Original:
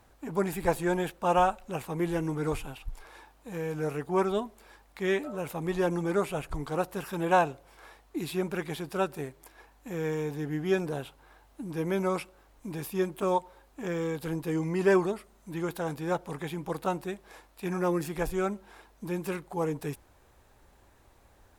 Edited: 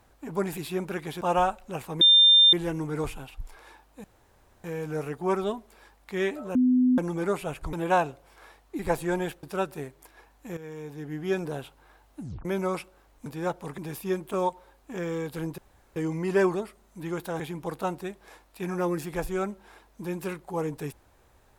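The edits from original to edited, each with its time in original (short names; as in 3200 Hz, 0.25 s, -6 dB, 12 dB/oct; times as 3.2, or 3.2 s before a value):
0.57–1.21 swap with 8.2–8.84
2.01 add tone 3600 Hz -13 dBFS 0.52 s
3.52 insert room tone 0.60 s
5.43–5.86 bleep 252 Hz -17.5 dBFS
6.61–7.14 cut
9.98–10.86 fade in linear, from -13 dB
11.61 tape stop 0.25 s
14.47 insert room tone 0.38 s
15.91–16.43 move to 12.67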